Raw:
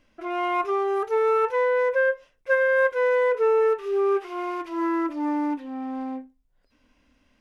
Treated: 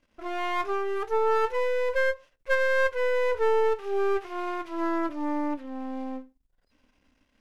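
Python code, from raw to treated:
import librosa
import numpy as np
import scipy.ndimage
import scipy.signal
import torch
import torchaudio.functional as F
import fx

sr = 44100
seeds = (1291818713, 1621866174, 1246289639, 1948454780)

y = np.where(x < 0.0, 10.0 ** (-12.0 / 20.0) * x, x)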